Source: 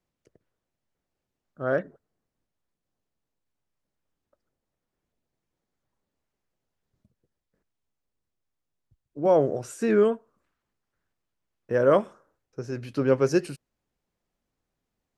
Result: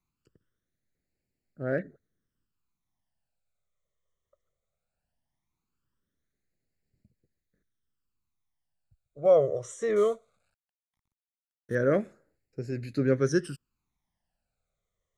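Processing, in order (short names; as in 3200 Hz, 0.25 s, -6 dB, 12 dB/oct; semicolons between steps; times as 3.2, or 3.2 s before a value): 9.96–11.75 CVSD 64 kbps; phaser stages 12, 0.18 Hz, lowest notch 260–1100 Hz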